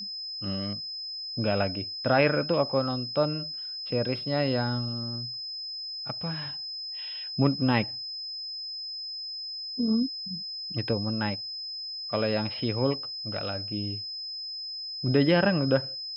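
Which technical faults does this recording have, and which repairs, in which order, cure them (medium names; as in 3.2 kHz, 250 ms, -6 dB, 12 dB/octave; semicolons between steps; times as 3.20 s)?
whine 5.1 kHz -34 dBFS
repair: band-stop 5.1 kHz, Q 30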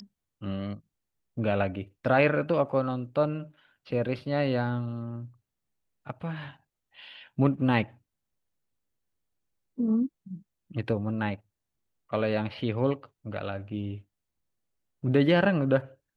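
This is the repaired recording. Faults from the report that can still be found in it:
nothing left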